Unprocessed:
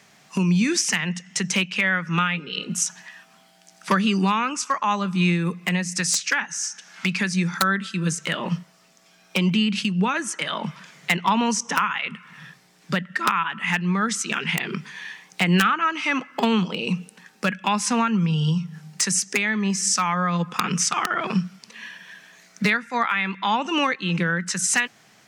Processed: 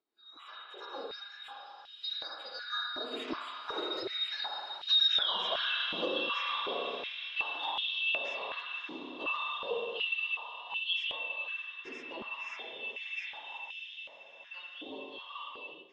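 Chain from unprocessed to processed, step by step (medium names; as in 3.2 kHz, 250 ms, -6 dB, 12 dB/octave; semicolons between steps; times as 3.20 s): four frequency bands reordered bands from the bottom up 2413; Doppler pass-by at 8.36 s, 58 m/s, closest 6.6 m; distance through air 290 m; spring tank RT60 2.4 s, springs 59 ms, chirp 25 ms, DRR -0.5 dB; harmonic-percussive split harmonic +8 dB; compression 5:1, threshold -45 dBFS, peak gain reduction 23.5 dB; treble shelf 5.6 kHz +6 dB; echo that smears into a reverb 933 ms, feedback 69%, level -11 dB; plain phase-vocoder stretch 0.63×; level rider gain up to 14 dB; step-sequenced high-pass 2.7 Hz 310–3000 Hz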